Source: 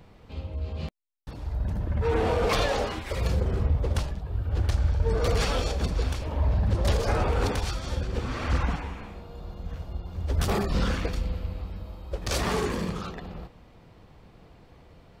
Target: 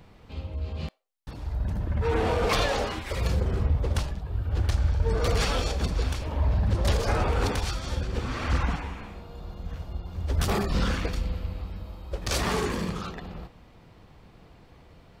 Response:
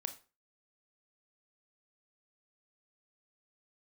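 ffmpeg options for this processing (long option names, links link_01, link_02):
-filter_complex "[0:a]asplit=2[link_01][link_02];[link_02]highpass=frequency=470:width=0.5412,highpass=frequency=470:width=1.3066[link_03];[1:a]atrim=start_sample=2205[link_04];[link_03][link_04]afir=irnorm=-1:irlink=0,volume=-12.5dB[link_05];[link_01][link_05]amix=inputs=2:normalize=0"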